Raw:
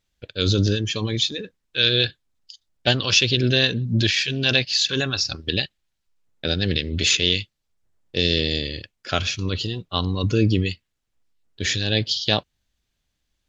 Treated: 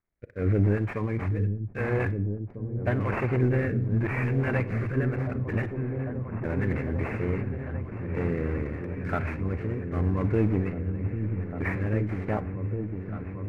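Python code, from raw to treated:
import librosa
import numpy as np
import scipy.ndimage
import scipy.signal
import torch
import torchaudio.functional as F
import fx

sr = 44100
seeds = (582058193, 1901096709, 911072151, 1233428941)

y = fx.cvsd(x, sr, bps=32000)
y = scipy.signal.sosfilt(scipy.signal.ellip(4, 1.0, 40, 2200.0, 'lowpass', fs=sr, output='sos'), y)
y = fx.leveller(y, sr, passes=1)
y = fx.rotary(y, sr, hz=0.85)
y = fx.echo_opening(y, sr, ms=799, hz=200, octaves=1, feedback_pct=70, wet_db=-3)
y = fx.rev_schroeder(y, sr, rt60_s=0.45, comb_ms=31, drr_db=16.0)
y = y * librosa.db_to_amplitude(-4.0)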